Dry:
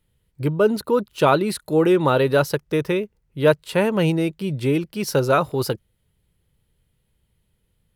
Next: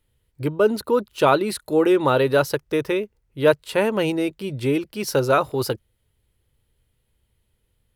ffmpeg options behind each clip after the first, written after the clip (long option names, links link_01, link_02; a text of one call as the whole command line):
ffmpeg -i in.wav -af "equalizer=frequency=170:width_type=o:width=0.32:gain=-13.5" out.wav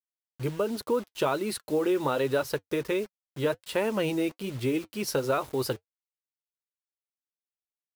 ffmpeg -i in.wav -af "acompressor=threshold=-19dB:ratio=4,acrusher=bits=6:mix=0:aa=0.000001,flanger=delay=2.6:depth=3.2:regen=-64:speed=1.3:shape=triangular" out.wav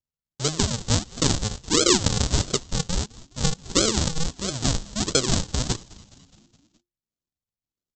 ffmpeg -i in.wav -filter_complex "[0:a]aresample=16000,acrusher=samples=34:mix=1:aa=0.000001:lfo=1:lforange=34:lforate=1.5,aresample=44100,aexciter=amount=6:drive=2.7:freq=3300,asplit=6[link_01][link_02][link_03][link_04][link_05][link_06];[link_02]adelay=209,afreqshift=-70,volume=-22dB[link_07];[link_03]adelay=418,afreqshift=-140,volume=-26.2dB[link_08];[link_04]adelay=627,afreqshift=-210,volume=-30.3dB[link_09];[link_05]adelay=836,afreqshift=-280,volume=-34.5dB[link_10];[link_06]adelay=1045,afreqshift=-350,volume=-38.6dB[link_11];[link_01][link_07][link_08][link_09][link_10][link_11]amix=inputs=6:normalize=0,volume=3.5dB" out.wav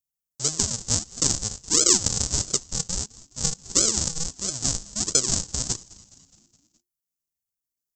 ffmpeg -i in.wav -af "aexciter=amount=6.6:drive=1.1:freq=5100,volume=-7.5dB" out.wav